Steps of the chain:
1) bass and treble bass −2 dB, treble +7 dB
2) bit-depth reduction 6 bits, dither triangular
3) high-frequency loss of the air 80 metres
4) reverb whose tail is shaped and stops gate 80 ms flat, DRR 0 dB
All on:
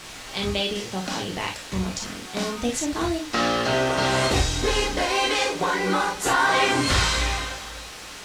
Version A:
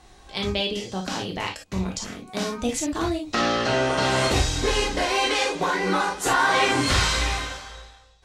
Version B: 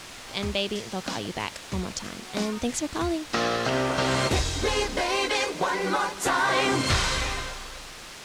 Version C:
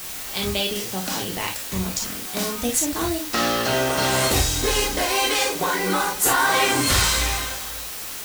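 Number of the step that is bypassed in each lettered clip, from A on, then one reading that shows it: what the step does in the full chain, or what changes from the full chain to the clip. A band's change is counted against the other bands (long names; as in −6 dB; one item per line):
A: 2, distortion level −10 dB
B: 4, change in integrated loudness −3.0 LU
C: 3, 8 kHz band +7.0 dB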